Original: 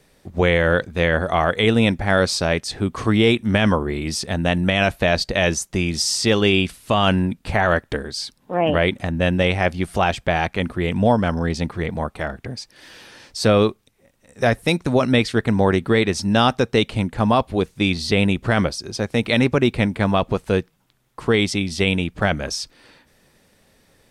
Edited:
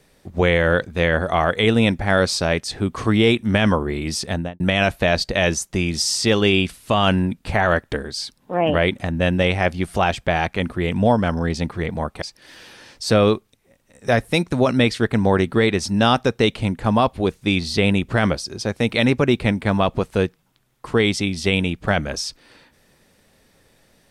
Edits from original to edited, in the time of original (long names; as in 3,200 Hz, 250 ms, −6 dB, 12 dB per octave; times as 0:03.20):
0:04.31–0:04.60: fade out and dull
0:12.22–0:12.56: remove